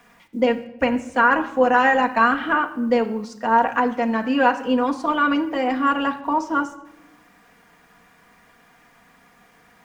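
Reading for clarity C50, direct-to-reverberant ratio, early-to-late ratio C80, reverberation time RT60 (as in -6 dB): 14.0 dB, 2.5 dB, 16.0 dB, no single decay rate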